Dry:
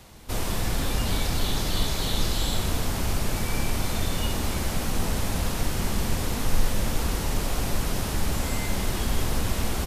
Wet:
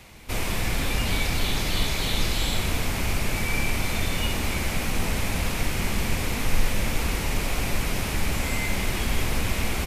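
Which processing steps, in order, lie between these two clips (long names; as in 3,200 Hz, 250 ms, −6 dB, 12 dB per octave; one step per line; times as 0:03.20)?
parametric band 2,300 Hz +9.5 dB 0.58 octaves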